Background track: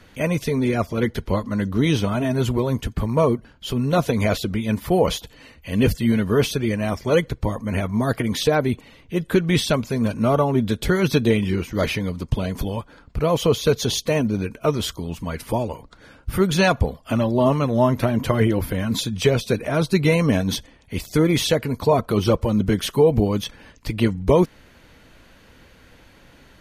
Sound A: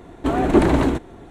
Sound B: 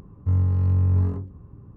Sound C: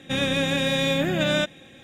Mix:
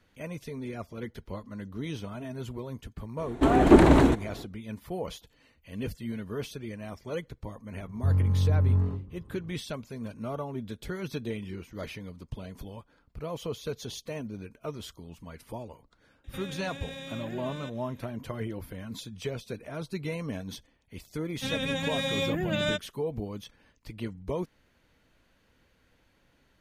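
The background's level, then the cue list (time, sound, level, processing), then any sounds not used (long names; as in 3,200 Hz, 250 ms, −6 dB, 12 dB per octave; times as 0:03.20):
background track −16.5 dB
0:03.17: mix in A −1 dB, fades 0.05 s
0:07.77: mix in B −3.5 dB
0:16.24: mix in C −12.5 dB + brickwall limiter −20 dBFS
0:21.32: mix in C −3.5 dB + spectral dynamics exaggerated over time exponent 2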